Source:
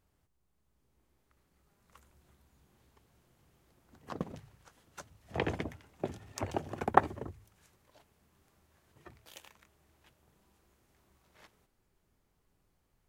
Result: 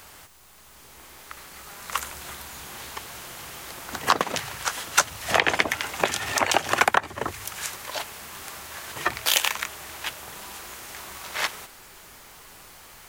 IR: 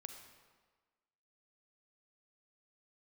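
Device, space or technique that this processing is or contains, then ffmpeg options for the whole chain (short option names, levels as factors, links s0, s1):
mastering chain: -filter_complex "[0:a]equalizer=f=810:t=o:w=2.3:g=3,acrossover=split=210|1100[s0][s1][s2];[s0]acompressor=threshold=0.00178:ratio=4[s3];[s1]acompressor=threshold=0.00708:ratio=4[s4];[s2]acompressor=threshold=0.00708:ratio=4[s5];[s3][s4][s5]amix=inputs=3:normalize=0,acompressor=threshold=0.00316:ratio=2,tiltshelf=f=680:g=-9.5,alimiter=level_in=23.7:limit=0.891:release=50:level=0:latency=1,volume=0.891"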